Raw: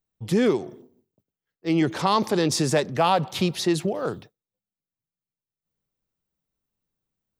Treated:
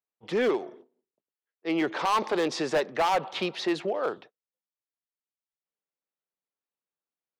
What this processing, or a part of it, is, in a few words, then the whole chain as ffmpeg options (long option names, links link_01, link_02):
walkie-talkie: -af "highpass=450,lowpass=3000,asoftclip=type=hard:threshold=-21.5dB,agate=range=-8dB:threshold=-52dB:ratio=16:detection=peak,volume=1.5dB"